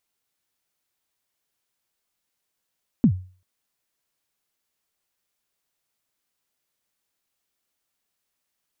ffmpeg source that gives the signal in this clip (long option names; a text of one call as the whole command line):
ffmpeg -f lavfi -i "aevalsrc='0.355*pow(10,-3*t/0.39)*sin(2*PI*(270*0.079/log(92/270)*(exp(log(92/270)*min(t,0.079)/0.079)-1)+92*max(t-0.079,0)))':duration=0.39:sample_rate=44100" out.wav